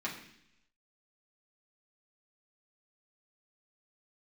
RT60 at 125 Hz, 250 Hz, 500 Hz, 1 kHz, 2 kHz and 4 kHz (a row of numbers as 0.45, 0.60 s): 0.90, 0.90, 0.75, 0.70, 0.95, 0.90 s